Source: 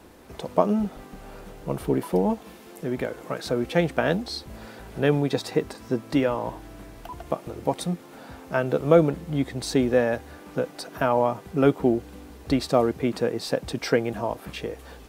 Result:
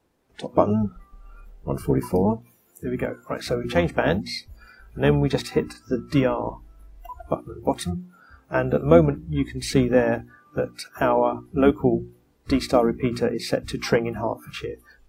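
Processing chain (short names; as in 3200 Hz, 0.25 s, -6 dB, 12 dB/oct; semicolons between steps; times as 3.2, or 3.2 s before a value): harmoniser -12 st -7 dB; spectral noise reduction 21 dB; notches 60/120/180/240/300/360 Hz; gain +1.5 dB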